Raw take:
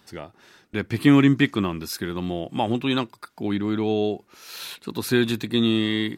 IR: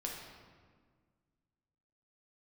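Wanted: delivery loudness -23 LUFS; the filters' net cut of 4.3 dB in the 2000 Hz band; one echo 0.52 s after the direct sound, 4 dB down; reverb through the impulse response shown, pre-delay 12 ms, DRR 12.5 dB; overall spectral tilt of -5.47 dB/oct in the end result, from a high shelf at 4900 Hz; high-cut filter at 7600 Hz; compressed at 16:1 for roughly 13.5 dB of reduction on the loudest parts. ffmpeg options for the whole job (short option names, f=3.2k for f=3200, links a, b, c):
-filter_complex "[0:a]lowpass=7.6k,equalizer=f=2k:t=o:g=-4,highshelf=f=4.9k:g=-7,acompressor=threshold=-24dB:ratio=16,aecho=1:1:520:0.631,asplit=2[a][b];[1:a]atrim=start_sample=2205,adelay=12[c];[b][c]afir=irnorm=-1:irlink=0,volume=-13dB[d];[a][d]amix=inputs=2:normalize=0,volume=6.5dB"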